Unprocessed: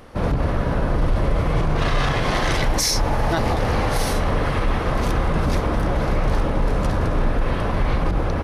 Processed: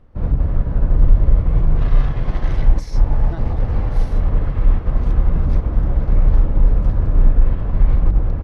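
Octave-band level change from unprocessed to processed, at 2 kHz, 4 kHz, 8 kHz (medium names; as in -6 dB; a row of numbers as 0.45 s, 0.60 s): -13.5 dB, -19.0 dB, under -20 dB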